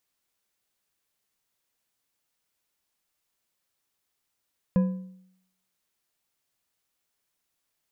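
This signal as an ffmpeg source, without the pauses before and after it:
-f lavfi -i "aevalsrc='0.158*pow(10,-3*t/0.73)*sin(2*PI*186*t)+0.0473*pow(10,-3*t/0.539)*sin(2*PI*512.8*t)+0.0141*pow(10,-3*t/0.44)*sin(2*PI*1005.1*t)+0.00422*pow(10,-3*t/0.378)*sin(2*PI*1661.5*t)+0.00126*pow(10,-3*t/0.336)*sin(2*PI*2481.2*t)':d=1.55:s=44100"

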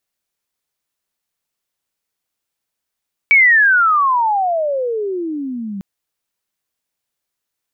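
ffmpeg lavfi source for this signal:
-f lavfi -i "aevalsrc='pow(10,(-6-17*t/2.5)/20)*sin(2*PI*2300*2.5/log(190/2300)*(exp(log(190/2300)*t/2.5)-1))':d=2.5:s=44100"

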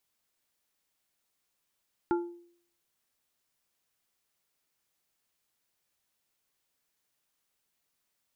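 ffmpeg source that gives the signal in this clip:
-f lavfi -i "aevalsrc='0.075*pow(10,-3*t/0.59)*sin(2*PI*346*t)+0.0398*pow(10,-3*t/0.311)*sin(2*PI*865*t)+0.0211*pow(10,-3*t/0.224)*sin(2*PI*1384*t)':d=0.89:s=44100"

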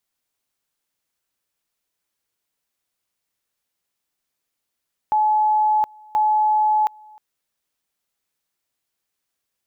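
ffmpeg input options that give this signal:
-f lavfi -i "aevalsrc='pow(10,(-14.5-27.5*gte(mod(t,1.03),0.72))/20)*sin(2*PI*855*t)':d=2.06:s=44100"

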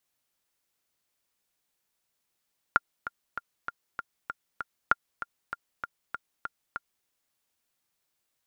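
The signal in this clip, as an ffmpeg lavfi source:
-f lavfi -i "aevalsrc='pow(10,(-6.5-13.5*gte(mod(t,7*60/195),60/195))/20)*sin(2*PI*1400*mod(t,60/195))*exp(-6.91*mod(t,60/195)/0.03)':d=4.3:s=44100"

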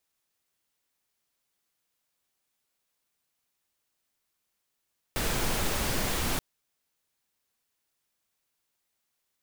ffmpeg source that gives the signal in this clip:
-f lavfi -i "anoisesrc=c=pink:a=0.193:d=1.23:r=44100:seed=1"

